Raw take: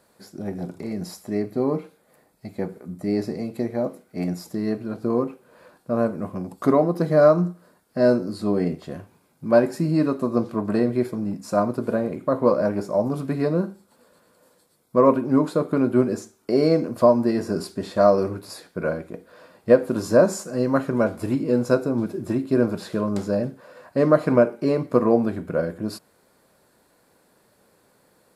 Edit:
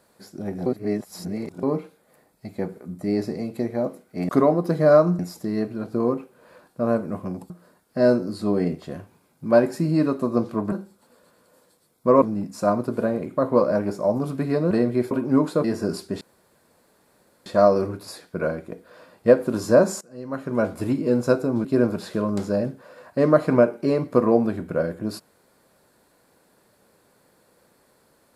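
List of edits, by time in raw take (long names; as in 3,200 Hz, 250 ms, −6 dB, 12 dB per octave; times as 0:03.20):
0:00.66–0:01.63: reverse
0:06.60–0:07.50: move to 0:04.29
0:10.72–0:11.12: swap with 0:13.61–0:15.11
0:15.64–0:17.31: remove
0:17.88: splice in room tone 1.25 s
0:20.43–0:21.08: fade in quadratic, from −18.5 dB
0:22.07–0:22.44: remove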